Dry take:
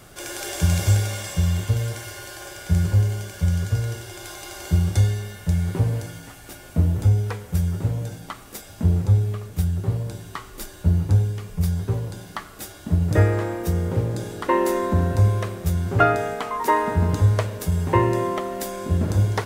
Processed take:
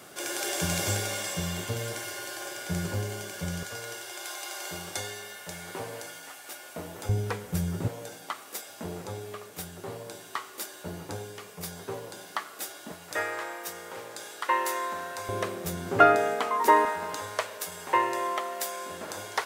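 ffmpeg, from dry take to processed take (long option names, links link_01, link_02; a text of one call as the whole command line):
ffmpeg -i in.wav -af "asetnsamples=nb_out_samples=441:pad=0,asendcmd='3.63 highpass f 560;7.09 highpass f 160;7.88 highpass f 440;12.92 highpass f 980;15.29 highpass f 270;16.85 highpass f 750',highpass=240" out.wav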